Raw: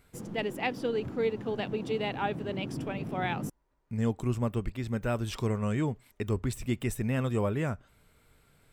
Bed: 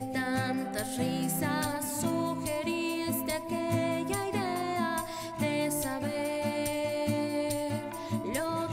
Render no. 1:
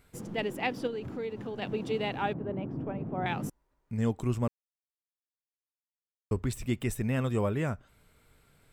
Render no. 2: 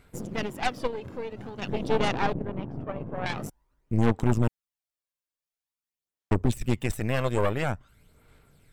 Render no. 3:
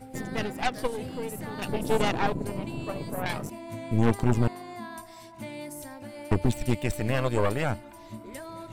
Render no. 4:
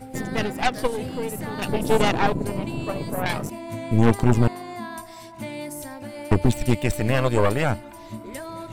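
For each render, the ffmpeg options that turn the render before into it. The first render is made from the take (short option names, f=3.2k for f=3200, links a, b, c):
-filter_complex "[0:a]asettb=1/sr,asplit=3[a][b][c];[a]atrim=end=0.874[d];[b]atrim=start=0.87:end=1.62,asetpts=PTS-STARTPTS,afade=t=in:d=0.004:c=qsin,afade=t=out:st=0.746:d=0.004:c=qsin,acompressor=threshold=-35dB:ratio=2.5:attack=3.2:release=140:knee=1:detection=peak[e];[c]atrim=start=1.616[f];[d][e]acrossfade=d=0.004:c1=hsin:c2=qsin[g];[g][f]acrossfade=d=0.004:c1=qsin:c2=hsin,asettb=1/sr,asplit=3[h][i][j];[h]atrim=end=2.334[k];[i]atrim=start=2.33:end=3.26,asetpts=PTS-STARTPTS,afade=t=in:d=0.004:c=qsin,afade=t=out:st=0.926:d=0.004:c=qsin,lowpass=1.1k[l];[j]atrim=start=3.256[m];[k][l]acrossfade=d=0.004:c1=hsin:c2=qsin[n];[n][m]acrossfade=d=0.004:c1=qsin:c2=hsin,asplit=3[o][p][q];[o]atrim=end=4.48,asetpts=PTS-STARTPTS,afade=t=out:st=4.476:d=0.004:c=hsin[r];[p]atrim=start=4.48:end=6.31,asetpts=PTS-STARTPTS,volume=0[s];[q]atrim=start=6.31,asetpts=PTS-STARTPTS,afade=t=in:d=0.004:c=hsin[t];[r][s][t]concat=n=3:v=0:a=1"
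-af "aphaser=in_gain=1:out_gain=1:delay=1.9:decay=0.48:speed=0.48:type=sinusoidal,aeval=exprs='0.299*(cos(1*acos(clip(val(0)/0.299,-1,1)))-cos(1*PI/2))+0.0531*(cos(8*acos(clip(val(0)/0.299,-1,1)))-cos(8*PI/2))':c=same"
-filter_complex "[1:a]volume=-9dB[a];[0:a][a]amix=inputs=2:normalize=0"
-af "volume=5.5dB"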